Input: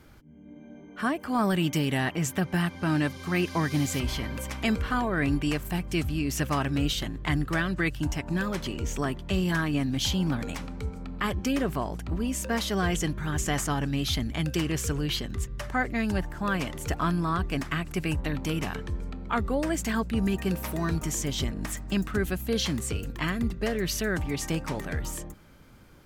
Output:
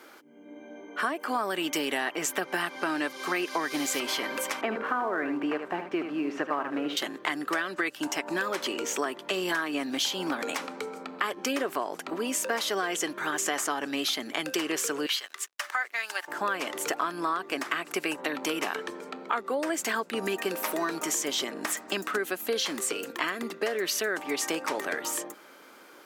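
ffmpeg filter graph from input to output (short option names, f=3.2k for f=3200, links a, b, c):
-filter_complex "[0:a]asettb=1/sr,asplit=3[a][b][c];[a]atrim=end=4.614[d];[b]atrim=start=4.61:end=6.97,asetpts=PTS-STARTPTS,afade=t=in:d=0.004:c=qsin,afade=t=out:st=2.356:d=0.004:c=qsin,lowpass=1.5k,aeval=exprs='sgn(val(0))*max(abs(val(0))-0.0015,0)':c=same,aecho=1:1:76:0.335,atrim=end_sample=104076[e];[c]atrim=start=6.966[f];[d][e]acrossfade=d=0.004:c1=hsin:c2=qsin[g];[g][f]acrossfade=d=0.004:c1=qsin:c2=hsin,asettb=1/sr,asplit=3[h][i][j];[h]atrim=end=15.064[k];[i]atrim=start=15.06:end=16.28,asetpts=PTS-STARTPTS,afade=t=in:d=0.004:c=qsin,afade=t=out:st=1.216:d=0.004:c=qsin,highpass=1.2k,aeval=exprs='sgn(val(0))*max(abs(val(0))-0.00119,0)':c=same[l];[j]atrim=start=16.276[m];[k][l]acrossfade=d=0.004:c1=hsin:c2=qsin[n];[n][m]acrossfade=d=0.004:c1=qsin:c2=hsin,highpass=f=330:w=0.5412,highpass=f=330:w=1.3066,equalizer=f=1.3k:w=1.5:g=2.5,acompressor=threshold=-33dB:ratio=5,volume=7dB"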